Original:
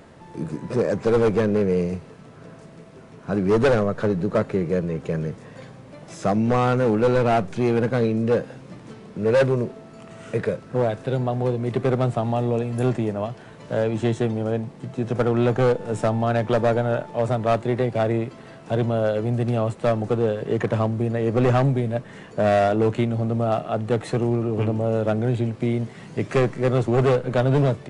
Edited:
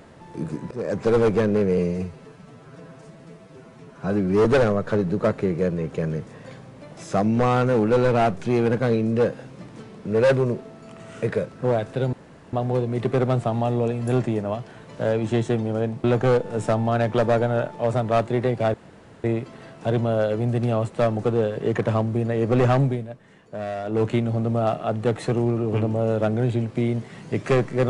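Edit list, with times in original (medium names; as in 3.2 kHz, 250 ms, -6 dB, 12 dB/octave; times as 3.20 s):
0.71–1.00 s: fade in, from -18.5 dB
1.78–3.56 s: stretch 1.5×
11.24 s: insert room tone 0.40 s
14.75–15.39 s: delete
18.09 s: insert room tone 0.50 s
21.71–22.90 s: dip -11.5 dB, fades 0.22 s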